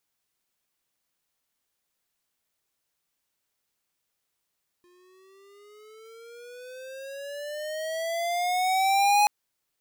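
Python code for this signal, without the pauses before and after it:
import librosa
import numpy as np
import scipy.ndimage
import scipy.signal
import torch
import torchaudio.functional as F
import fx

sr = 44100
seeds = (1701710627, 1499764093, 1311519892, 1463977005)

y = fx.riser_tone(sr, length_s=4.43, level_db=-19, wave='square', hz=352.0, rise_st=15.0, swell_db=40)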